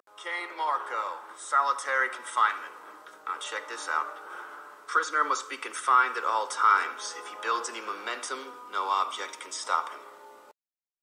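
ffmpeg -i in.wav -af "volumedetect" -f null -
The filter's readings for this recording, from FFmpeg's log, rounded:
mean_volume: -30.3 dB
max_volume: -9.6 dB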